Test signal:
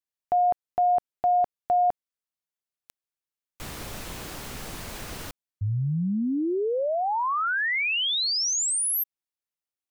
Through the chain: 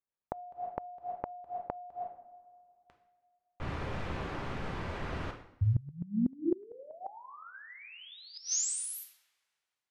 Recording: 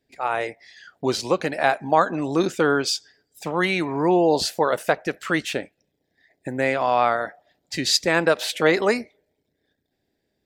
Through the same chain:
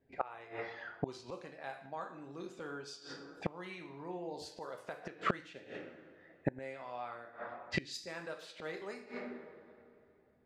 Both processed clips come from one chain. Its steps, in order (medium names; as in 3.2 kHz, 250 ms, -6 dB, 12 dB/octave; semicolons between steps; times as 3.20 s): two-slope reverb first 0.67 s, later 2.6 s, from -24 dB, DRR 3 dB; level-controlled noise filter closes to 1.5 kHz, open at -14.5 dBFS; inverted gate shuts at -18 dBFS, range -26 dB